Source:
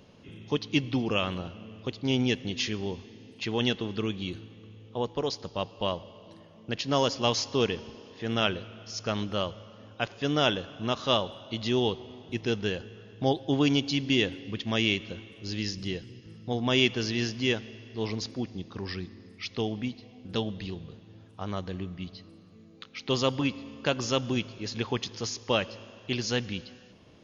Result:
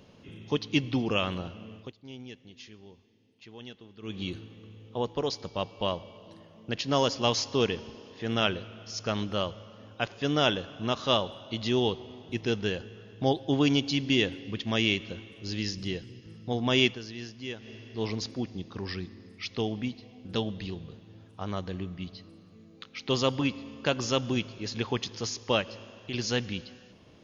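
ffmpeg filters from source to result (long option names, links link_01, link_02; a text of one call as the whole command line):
ffmpeg -i in.wav -filter_complex "[0:a]asettb=1/sr,asplit=3[link_01][link_02][link_03];[link_01]atrim=end=5.314[link_04];[link_02]atrim=start=5.31:end=6.17,asetpts=PTS-STARTPTS,afade=type=in:duration=0.004:curve=qsin,afade=type=out:start_time=0.856:duration=0.004:curve=qsin,aeval=exprs='val(0)+0.000708*sin(2*PI*2300*n/s)':channel_layout=same[link_05];[link_03]atrim=start=6.166[link_06];[link_04][link_05]acrossfade=duration=0.004:curve1=hsin:curve2=qsin[link_07];[link_07][link_06]acrossfade=duration=0.004:curve1=qsin:curve2=hsin,asettb=1/sr,asplit=3[link_08][link_09][link_10];[link_08]atrim=end=25.614[link_11];[link_09]atrim=start=25.61:end=26.14,asetpts=PTS-STARTPTS,afade=type=in:duration=0.004:curve=qsin,afade=type=out:start_time=0.526:duration=0.004:curve=qsin,acompressor=threshold=-34dB:ratio=2.5:attack=3.2:release=140:knee=1:detection=peak[link_12];[link_10]atrim=start=26.136[link_13];[link_11][link_12]acrossfade=duration=0.004:curve1=hsin:curve2=qsin[link_14];[link_14][link_13]acrossfade=duration=0.004:curve1=qsin:curve2=hsin,asplit=5[link_15][link_16][link_17][link_18][link_19];[link_15]atrim=end=1.93,asetpts=PTS-STARTPTS,afade=type=out:start_time=1.74:duration=0.19:silence=0.125893[link_20];[link_16]atrim=start=1.93:end=4.01,asetpts=PTS-STARTPTS,volume=-18dB[link_21];[link_17]atrim=start=4.01:end=16.99,asetpts=PTS-STARTPTS,afade=type=in:duration=0.19:silence=0.125893,afade=type=out:start_time=12.85:duration=0.13:silence=0.281838[link_22];[link_18]atrim=start=16.99:end=17.58,asetpts=PTS-STARTPTS,volume=-11dB[link_23];[link_19]atrim=start=17.58,asetpts=PTS-STARTPTS,afade=type=in:duration=0.13:silence=0.281838[link_24];[link_20][link_21][link_22][link_23][link_24]concat=n=5:v=0:a=1" out.wav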